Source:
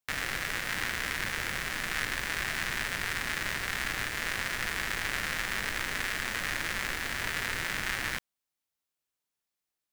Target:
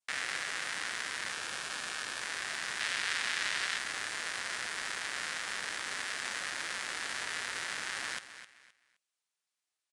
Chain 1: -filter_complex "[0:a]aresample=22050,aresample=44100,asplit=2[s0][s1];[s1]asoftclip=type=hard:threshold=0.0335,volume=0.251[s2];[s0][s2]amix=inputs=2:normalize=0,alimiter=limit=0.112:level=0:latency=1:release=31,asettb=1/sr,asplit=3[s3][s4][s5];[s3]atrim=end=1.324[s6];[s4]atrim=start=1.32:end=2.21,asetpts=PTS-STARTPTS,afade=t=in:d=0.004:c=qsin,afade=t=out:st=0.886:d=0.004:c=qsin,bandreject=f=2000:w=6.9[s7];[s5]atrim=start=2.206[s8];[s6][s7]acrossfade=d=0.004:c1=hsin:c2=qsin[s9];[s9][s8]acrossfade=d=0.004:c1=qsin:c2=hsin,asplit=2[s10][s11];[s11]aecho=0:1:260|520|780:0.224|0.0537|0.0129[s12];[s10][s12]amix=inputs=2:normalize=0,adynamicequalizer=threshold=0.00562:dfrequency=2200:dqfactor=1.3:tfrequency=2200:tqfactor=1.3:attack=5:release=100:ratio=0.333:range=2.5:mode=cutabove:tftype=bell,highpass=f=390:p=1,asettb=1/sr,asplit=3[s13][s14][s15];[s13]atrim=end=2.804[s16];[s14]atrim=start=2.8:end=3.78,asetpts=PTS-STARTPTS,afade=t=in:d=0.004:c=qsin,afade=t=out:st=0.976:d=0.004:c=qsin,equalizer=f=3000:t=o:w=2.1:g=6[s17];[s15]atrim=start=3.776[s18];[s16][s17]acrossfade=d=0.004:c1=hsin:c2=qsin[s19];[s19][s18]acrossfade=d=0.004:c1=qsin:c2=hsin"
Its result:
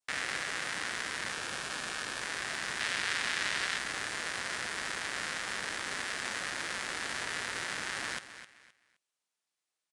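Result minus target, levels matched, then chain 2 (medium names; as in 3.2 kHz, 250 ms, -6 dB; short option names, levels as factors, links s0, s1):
500 Hz band +3.5 dB
-filter_complex "[0:a]aresample=22050,aresample=44100,asplit=2[s0][s1];[s1]asoftclip=type=hard:threshold=0.0335,volume=0.251[s2];[s0][s2]amix=inputs=2:normalize=0,alimiter=limit=0.112:level=0:latency=1:release=31,asettb=1/sr,asplit=3[s3][s4][s5];[s3]atrim=end=1.324[s6];[s4]atrim=start=1.32:end=2.21,asetpts=PTS-STARTPTS,afade=t=in:d=0.004:c=qsin,afade=t=out:st=0.886:d=0.004:c=qsin,bandreject=f=2000:w=6.9[s7];[s5]atrim=start=2.206[s8];[s6][s7]acrossfade=d=0.004:c1=hsin:c2=qsin[s9];[s9][s8]acrossfade=d=0.004:c1=qsin:c2=hsin,asplit=2[s10][s11];[s11]aecho=0:1:260|520|780:0.224|0.0537|0.0129[s12];[s10][s12]amix=inputs=2:normalize=0,adynamicequalizer=threshold=0.00562:dfrequency=2200:dqfactor=1.3:tfrequency=2200:tqfactor=1.3:attack=5:release=100:ratio=0.333:range=2.5:mode=cutabove:tftype=bell,highpass=f=960:p=1,asettb=1/sr,asplit=3[s13][s14][s15];[s13]atrim=end=2.804[s16];[s14]atrim=start=2.8:end=3.78,asetpts=PTS-STARTPTS,afade=t=in:d=0.004:c=qsin,afade=t=out:st=0.976:d=0.004:c=qsin,equalizer=f=3000:t=o:w=2.1:g=6[s17];[s15]atrim=start=3.776[s18];[s16][s17]acrossfade=d=0.004:c1=hsin:c2=qsin[s19];[s19][s18]acrossfade=d=0.004:c1=qsin:c2=hsin"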